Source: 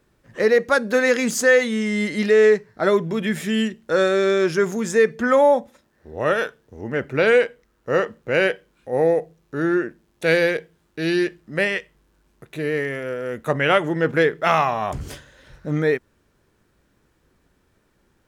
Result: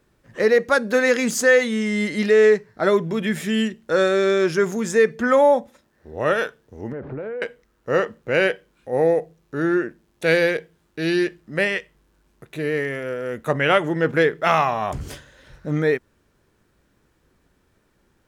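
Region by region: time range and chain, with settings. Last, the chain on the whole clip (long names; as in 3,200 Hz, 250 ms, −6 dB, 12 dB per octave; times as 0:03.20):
0:06.92–0:07.42: converter with a step at zero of −32.5 dBFS + low-pass filter 1,000 Hz + downward compressor 12 to 1, threshold −27 dBFS
whole clip: no processing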